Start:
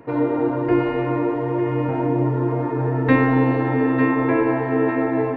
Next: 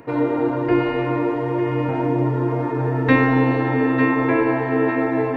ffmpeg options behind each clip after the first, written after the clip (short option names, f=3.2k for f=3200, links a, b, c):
-af "areverse,acompressor=mode=upward:threshold=-22dB:ratio=2.5,areverse,highshelf=f=2.7k:g=9"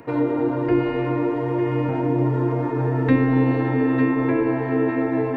-filter_complex "[0:a]acrossover=split=460[a][b];[b]acompressor=threshold=-28dB:ratio=6[c];[a][c]amix=inputs=2:normalize=0"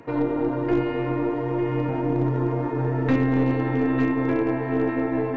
-af "volume=12.5dB,asoftclip=hard,volume=-12.5dB,aeval=exprs='0.251*(cos(1*acos(clip(val(0)/0.251,-1,1)))-cos(1*PI/2))+0.0316*(cos(2*acos(clip(val(0)/0.251,-1,1)))-cos(2*PI/2))':c=same,volume=-2.5dB" -ar 16000 -c:a sbc -b:a 192k